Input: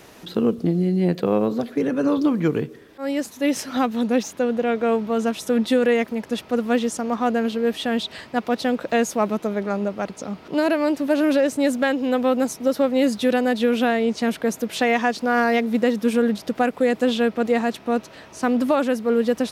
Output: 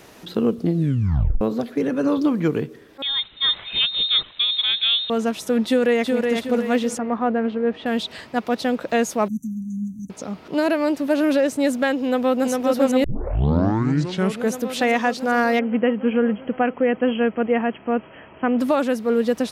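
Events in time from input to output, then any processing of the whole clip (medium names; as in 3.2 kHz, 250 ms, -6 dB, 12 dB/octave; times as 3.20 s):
0.74 s: tape stop 0.67 s
3.02–5.10 s: frequency inversion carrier 3.9 kHz
5.66–6.26 s: echo throw 370 ms, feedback 45%, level -4 dB
6.98–7.86 s: low-pass 1.9 kHz
9.28–10.10 s: brick-wall FIR band-stop 280–5800 Hz
12.04–12.51 s: echo throw 400 ms, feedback 80%, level -2.5 dB
13.04 s: tape start 1.48 s
15.59–18.59 s: brick-wall FIR low-pass 3.3 kHz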